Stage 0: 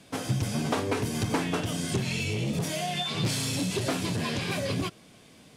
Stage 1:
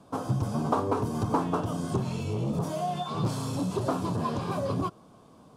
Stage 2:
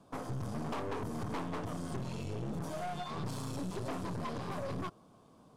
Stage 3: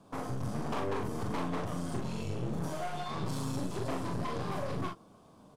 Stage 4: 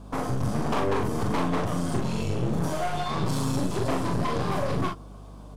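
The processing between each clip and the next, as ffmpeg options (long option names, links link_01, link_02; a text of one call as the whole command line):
ffmpeg -i in.wav -af "highshelf=frequency=1500:width_type=q:width=3:gain=-10" out.wav
ffmpeg -i in.wav -af "aeval=exprs='(tanh(39.8*val(0)+0.65)-tanh(0.65))/39.8':channel_layout=same,volume=-3dB" out.wav
ffmpeg -i in.wav -af "aecho=1:1:41|56:0.631|0.251,volume=1.5dB" out.wav
ffmpeg -i in.wav -af "aeval=exprs='val(0)+0.00282*(sin(2*PI*50*n/s)+sin(2*PI*2*50*n/s)/2+sin(2*PI*3*50*n/s)/3+sin(2*PI*4*50*n/s)/4+sin(2*PI*5*50*n/s)/5)':channel_layout=same,volume=8.5dB" out.wav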